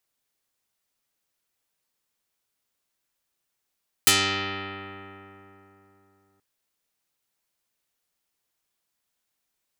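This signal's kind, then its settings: plucked string G2, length 2.33 s, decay 3.57 s, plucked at 0.18, dark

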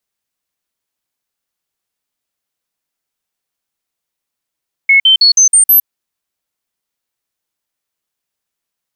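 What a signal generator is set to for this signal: stepped sine 2190 Hz up, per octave 2, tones 6, 0.11 s, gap 0.05 s -4 dBFS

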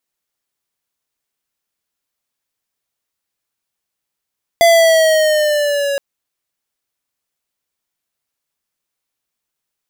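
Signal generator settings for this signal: gliding synth tone square, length 1.37 s, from 681 Hz, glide -3.5 st, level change -10 dB, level -8 dB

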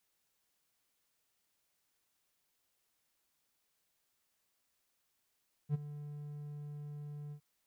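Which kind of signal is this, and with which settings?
ADSR triangle 147 Hz, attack 53 ms, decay 20 ms, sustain -15 dB, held 1.63 s, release 83 ms -25.5 dBFS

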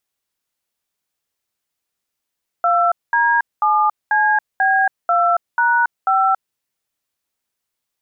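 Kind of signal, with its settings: DTMF "2D7CB2#5", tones 0.278 s, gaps 0.212 s, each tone -15 dBFS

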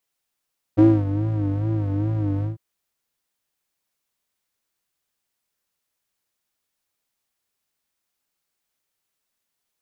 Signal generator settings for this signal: synth patch with vibrato G#2, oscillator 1 square, oscillator 2 saw, interval +19 st, detune 22 cents, filter bandpass, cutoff 160 Hz, Q 4.2, filter envelope 1 oct, filter sustain 30%, attack 20 ms, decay 0.26 s, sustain -9 dB, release 0.14 s, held 1.66 s, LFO 2.4 Hz, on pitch 98 cents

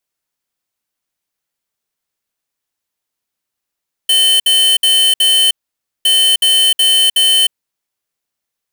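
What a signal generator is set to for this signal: beep pattern square 3060 Hz, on 0.31 s, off 0.06 s, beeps 4, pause 0.54 s, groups 2, -10.5 dBFS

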